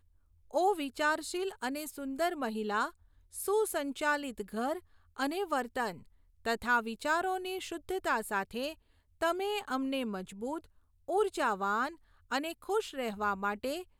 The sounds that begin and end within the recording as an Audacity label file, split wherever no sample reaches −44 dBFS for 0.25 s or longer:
0.510000	2.900000	sound
3.340000	4.790000	sound
5.160000	5.990000	sound
6.450000	8.730000	sound
9.210000	10.640000	sound
11.080000	11.940000	sound